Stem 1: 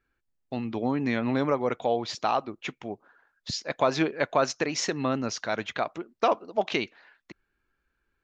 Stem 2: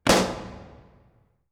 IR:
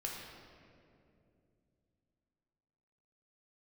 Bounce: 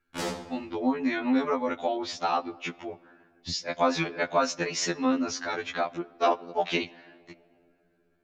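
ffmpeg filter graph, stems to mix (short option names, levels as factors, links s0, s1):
-filter_complex "[0:a]equalizer=f=450:w=2.6:g=-3,volume=1.26,asplit=2[s0][s1];[s1]volume=0.106[s2];[1:a]alimiter=limit=0.282:level=0:latency=1:release=115,adelay=100,volume=0.376,asplit=2[s3][s4];[s4]volume=0.0891[s5];[2:a]atrim=start_sample=2205[s6];[s2][s5]amix=inputs=2:normalize=0[s7];[s7][s6]afir=irnorm=-1:irlink=0[s8];[s0][s3][s8]amix=inputs=3:normalize=0,afftfilt=real='re*2*eq(mod(b,4),0)':imag='im*2*eq(mod(b,4),0)':win_size=2048:overlap=0.75"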